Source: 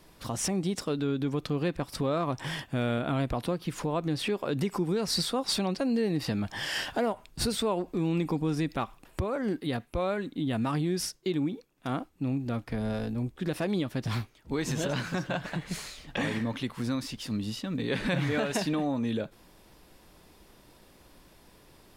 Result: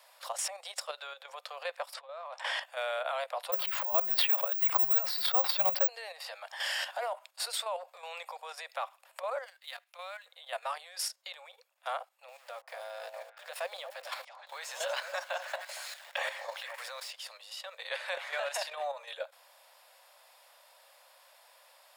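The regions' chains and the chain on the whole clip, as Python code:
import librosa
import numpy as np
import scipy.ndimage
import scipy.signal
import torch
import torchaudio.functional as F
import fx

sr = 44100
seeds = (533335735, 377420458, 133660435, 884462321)

y = fx.chain(x, sr, fx.over_compress(threshold_db=-33.0, ratio=-0.5),
    fx.air_absorb(metres=65.0), at=(1.94, 2.63))
y = fx.chain(y, sr, fx.lowpass(hz=3400.0, slope=12),
    fx.resample_bad(factor=2, down='filtered', up='zero_stuff'),
    fx.sustainer(db_per_s=26.0), at=(3.52, 5.88))
y = fx.chain(y, sr, fx.median_filter(points=5),
    fx.tone_stack(knobs='10-0-10'), at=(9.45, 10.26))
y = fx.chain(y, sr, fx.sample_gate(floor_db=-46.0),
    fx.echo_stepped(ms=231, hz=700.0, octaves=1.4, feedback_pct=70, wet_db=-6.0), at=(12.28, 17.11))
y = scipy.signal.sosfilt(scipy.signal.butter(16, 530.0, 'highpass', fs=sr, output='sos'), y)
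y = fx.notch(y, sr, hz=6000.0, q=12.0)
y = fx.level_steps(y, sr, step_db=9)
y = y * 10.0 ** (2.5 / 20.0)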